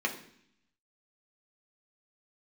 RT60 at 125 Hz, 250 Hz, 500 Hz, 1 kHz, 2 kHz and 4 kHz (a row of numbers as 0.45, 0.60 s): 0.95, 0.90, 0.65, 0.65, 0.75, 0.80 s